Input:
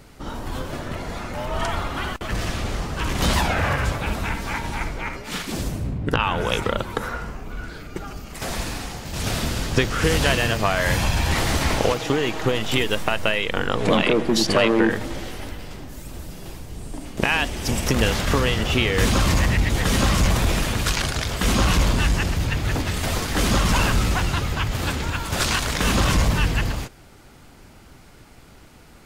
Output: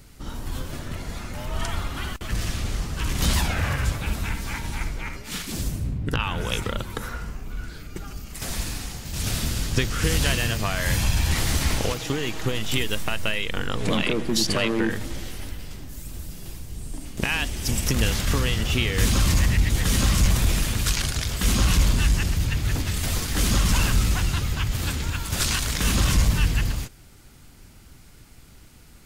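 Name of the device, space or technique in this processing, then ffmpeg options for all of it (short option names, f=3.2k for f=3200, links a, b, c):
smiley-face EQ: -af "lowshelf=f=140:g=5.5,equalizer=f=680:t=o:w=2:g=-5.5,highshelf=f=5.4k:g=8,volume=-4dB"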